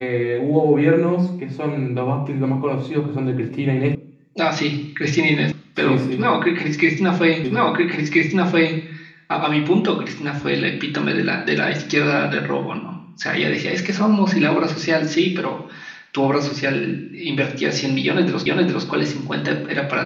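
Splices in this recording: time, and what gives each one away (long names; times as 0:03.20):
0:03.95: cut off before it has died away
0:05.52: cut off before it has died away
0:07.44: the same again, the last 1.33 s
0:18.46: the same again, the last 0.41 s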